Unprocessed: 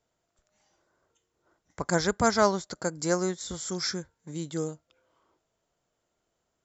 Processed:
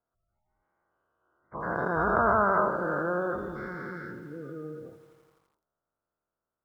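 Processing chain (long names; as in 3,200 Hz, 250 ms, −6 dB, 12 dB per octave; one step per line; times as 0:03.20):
every bin's largest magnitude spread in time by 480 ms
source passing by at 0:02.87, 6 m/s, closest 8.2 metres
gate on every frequency bin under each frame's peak −20 dB strong
transistor ladder low-pass 1,600 Hz, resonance 45%
feedback echo at a low word length 84 ms, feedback 80%, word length 10 bits, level −13.5 dB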